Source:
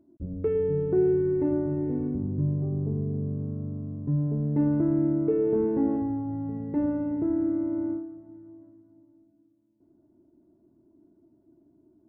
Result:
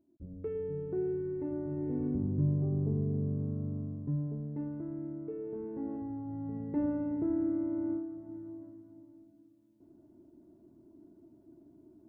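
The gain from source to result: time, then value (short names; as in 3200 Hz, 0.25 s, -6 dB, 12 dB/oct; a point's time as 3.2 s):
1.5 s -11 dB
2.15 s -2.5 dB
3.81 s -2.5 dB
4.73 s -15.5 dB
5.61 s -15.5 dB
6.57 s -5 dB
7.82 s -5 dB
8.35 s +3 dB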